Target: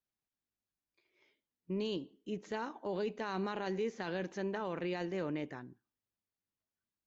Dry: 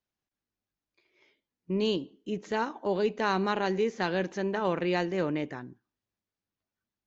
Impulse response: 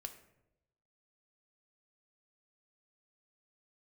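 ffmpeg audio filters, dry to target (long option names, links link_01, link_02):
-af "alimiter=limit=-21.5dB:level=0:latency=1:release=13,volume=-6.5dB"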